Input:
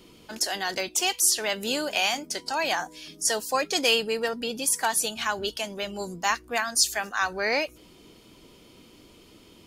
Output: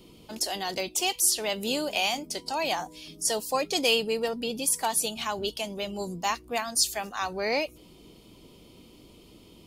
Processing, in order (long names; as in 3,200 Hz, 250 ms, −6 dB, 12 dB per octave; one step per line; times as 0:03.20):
graphic EQ with 15 bands 160 Hz +3 dB, 1,600 Hz −11 dB, 6,300 Hz −4 dB
mains hum 50 Hz, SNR 34 dB